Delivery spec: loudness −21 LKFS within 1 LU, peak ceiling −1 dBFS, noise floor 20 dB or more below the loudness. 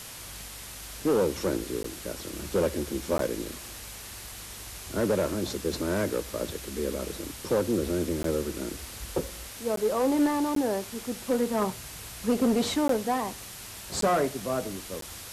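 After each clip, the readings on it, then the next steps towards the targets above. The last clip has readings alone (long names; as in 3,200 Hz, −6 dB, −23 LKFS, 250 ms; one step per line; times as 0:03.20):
number of dropouts 8; longest dropout 13 ms; background noise floor −42 dBFS; target noise floor −50 dBFS; integrated loudness −29.5 LKFS; sample peak −15.5 dBFS; target loudness −21.0 LKFS
→ repair the gap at 0:01.83/0:03.18/0:08.23/0:09.76/0:10.55/0:12.88/0:14.01/0:15.01, 13 ms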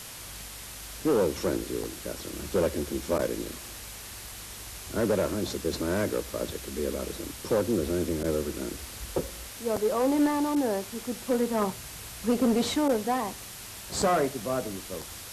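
number of dropouts 0; background noise floor −42 dBFS; target noise floor −50 dBFS
→ broadband denoise 8 dB, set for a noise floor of −42 dBFS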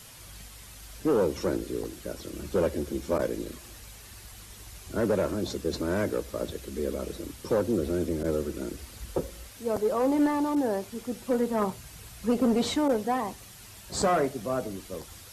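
background noise floor −48 dBFS; target noise floor −49 dBFS
→ broadband denoise 6 dB, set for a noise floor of −48 dBFS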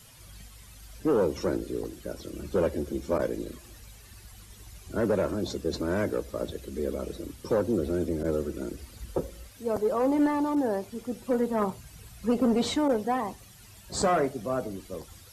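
background noise floor −51 dBFS; integrated loudness −29.5 LKFS; sample peak −16.0 dBFS; target loudness −21.0 LKFS
→ level +8.5 dB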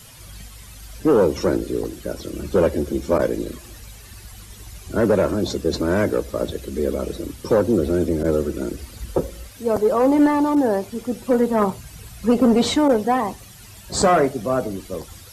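integrated loudness −21.0 LKFS; sample peak −7.5 dBFS; background noise floor −43 dBFS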